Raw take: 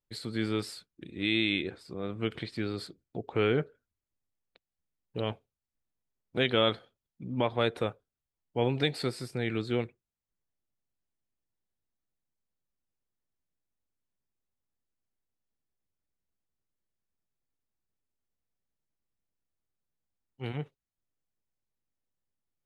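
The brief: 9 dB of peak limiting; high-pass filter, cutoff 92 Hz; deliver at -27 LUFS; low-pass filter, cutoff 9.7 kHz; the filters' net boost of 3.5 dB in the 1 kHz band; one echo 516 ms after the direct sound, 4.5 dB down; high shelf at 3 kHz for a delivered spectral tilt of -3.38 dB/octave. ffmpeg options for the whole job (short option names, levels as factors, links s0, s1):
-af "highpass=92,lowpass=9700,equalizer=f=1000:t=o:g=3.5,highshelf=f=3000:g=8.5,alimiter=limit=0.133:level=0:latency=1,aecho=1:1:516:0.596,volume=2"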